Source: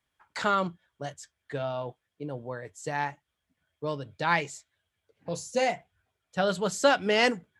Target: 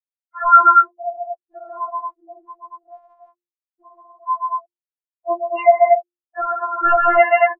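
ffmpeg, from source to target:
-filter_complex "[0:a]highpass=f=240:p=1,equalizer=f=880:t=o:w=2.5:g=12,aecho=1:1:37.9|137|233.2:0.282|0.708|0.708,asplit=2[s0][s1];[s1]highpass=f=720:p=1,volume=5.62,asoftclip=type=tanh:threshold=0.944[s2];[s0][s2]amix=inputs=2:normalize=0,lowpass=f=1200:p=1,volume=0.501,asplit=3[s3][s4][s5];[s3]afade=t=out:st=2.45:d=0.02[s6];[s4]acompressor=threshold=0.0708:ratio=16,afade=t=in:st=2.45:d=0.02,afade=t=out:st=5.29:d=0.02[s7];[s5]afade=t=in:st=5.29:d=0.02[s8];[s6][s7][s8]amix=inputs=3:normalize=0,afftfilt=real='re*gte(hypot(re,im),0.251)':imag='im*gte(hypot(re,im),0.251)':win_size=1024:overlap=0.75,bandreject=f=50:t=h:w=6,bandreject=f=100:t=h:w=6,bandreject=f=150:t=h:w=6,bandreject=f=200:t=h:w=6,bandreject=f=250:t=h:w=6,bandreject=f=300:t=h:w=6,bandreject=f=350:t=h:w=6,bandreject=f=400:t=h:w=6,bandreject=f=450:t=h:w=6,bandreject=f=500:t=h:w=6,dynaudnorm=f=300:g=11:m=1.78,afftfilt=real='re*4*eq(mod(b,16),0)':imag='im*4*eq(mod(b,16),0)':win_size=2048:overlap=0.75,volume=1.19"

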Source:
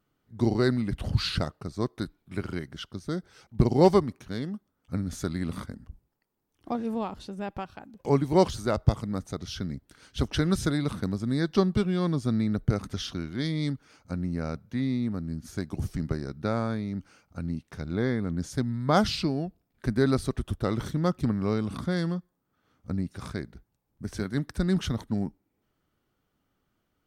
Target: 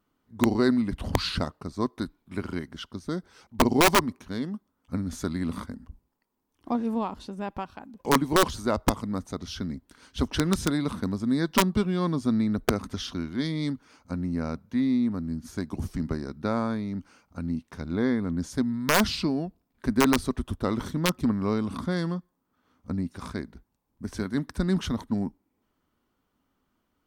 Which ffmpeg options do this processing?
-af "aeval=exprs='(mod(4.22*val(0)+1,2)-1)/4.22':c=same,equalizer=f=125:t=o:w=0.33:g=-9,equalizer=f=250:t=o:w=0.33:g=6,equalizer=f=1000:t=o:w=0.33:g=7"

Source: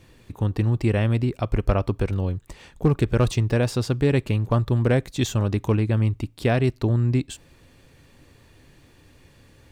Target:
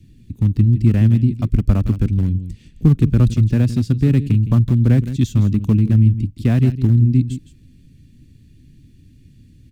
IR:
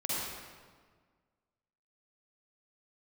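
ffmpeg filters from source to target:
-filter_complex "[0:a]asplit=2[s0][s1];[s1]adelay=163.3,volume=0.282,highshelf=f=4000:g=-3.67[s2];[s0][s2]amix=inputs=2:normalize=0,acrossover=split=340|370|2000[s3][s4][s5][s6];[s5]aeval=exprs='val(0)*gte(abs(val(0)),0.0299)':c=same[s7];[s3][s4][s7][s6]amix=inputs=4:normalize=0,lowshelf=f=330:t=q:w=1.5:g=11.5,volume=0.562"

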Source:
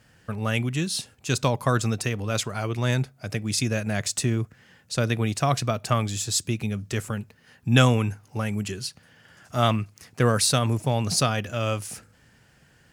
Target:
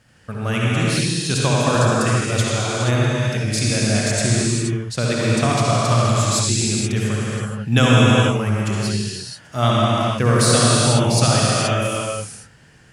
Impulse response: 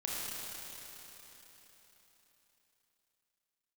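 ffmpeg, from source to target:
-filter_complex "[1:a]atrim=start_sample=2205,afade=t=out:st=0.29:d=0.01,atrim=end_sample=13230,asetrate=22050,aresample=44100[s0];[0:a][s0]afir=irnorm=-1:irlink=0"

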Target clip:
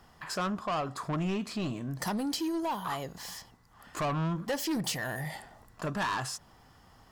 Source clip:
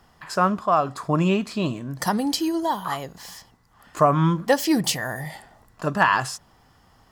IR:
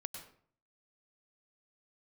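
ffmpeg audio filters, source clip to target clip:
-filter_complex "[0:a]asplit=2[s0][s1];[s1]acompressor=threshold=0.0316:ratio=6,volume=1.12[s2];[s0][s2]amix=inputs=2:normalize=0,asoftclip=type=tanh:threshold=0.112,volume=0.398"

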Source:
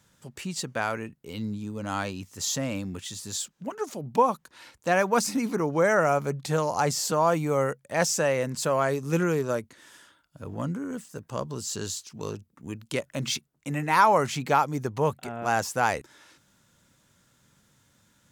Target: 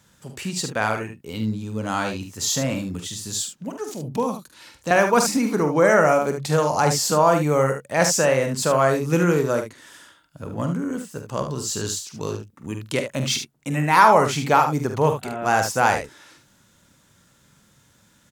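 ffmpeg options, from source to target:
-filter_complex "[0:a]asettb=1/sr,asplit=3[s0][s1][s2];[s0]atrim=end=2.744[s3];[s1]atrim=start=2.74:end=4.91,asetpts=PTS-STARTPTS,afade=t=in:d=0.004:c=qsin,afade=t=out:st=2.166:d=0.004:c=qsin,acrossover=split=380|3000[s4][s5][s6];[s5]acompressor=threshold=0.00178:ratio=1.5[s7];[s4][s7][s6]amix=inputs=3:normalize=0[s8];[s2]atrim=start=4.906[s9];[s3][s8]acrossfade=d=0.004:c1=hsin:c2=qsin[s10];[s10][s9]acrossfade=d=0.004:c1=qsin:c2=hsin,aecho=1:1:46|74:0.355|0.376,volume=1.78"

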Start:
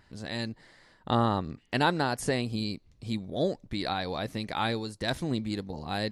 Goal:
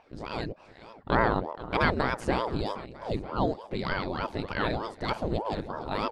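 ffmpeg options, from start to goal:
-af "aemphasis=mode=reproduction:type=75fm,aecho=1:1:475|950|1425|1900:0.158|0.0792|0.0396|0.0198,aeval=exprs='val(0)*sin(2*PI*430*n/s+430*0.85/3.3*sin(2*PI*3.3*n/s))':c=same,volume=1.5"

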